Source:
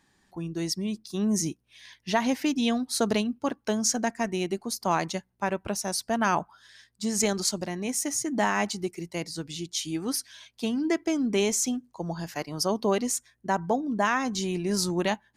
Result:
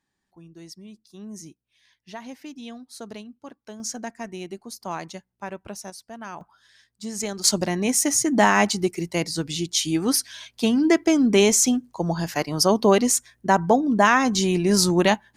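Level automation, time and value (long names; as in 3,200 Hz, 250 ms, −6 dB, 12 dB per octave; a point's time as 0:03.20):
−13 dB
from 0:03.80 −6 dB
from 0:05.90 −12.5 dB
from 0:06.41 −4 dB
from 0:07.44 +8 dB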